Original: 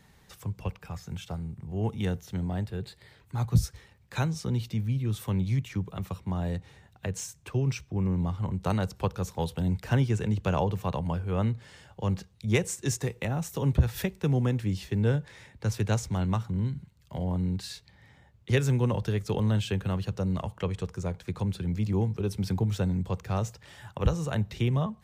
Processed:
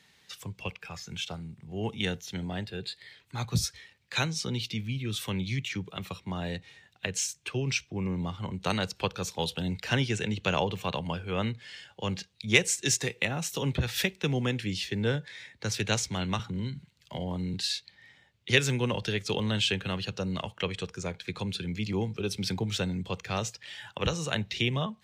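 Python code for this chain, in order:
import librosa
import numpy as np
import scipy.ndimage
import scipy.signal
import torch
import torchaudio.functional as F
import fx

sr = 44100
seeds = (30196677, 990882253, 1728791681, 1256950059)

y = fx.weighting(x, sr, curve='D')
y = fx.noise_reduce_blind(y, sr, reduce_db=6)
y = fx.peak_eq(y, sr, hz=2700.0, db=-5.5, octaves=0.42, at=(14.91, 15.74))
y = fx.band_squash(y, sr, depth_pct=40, at=(16.39, 17.54))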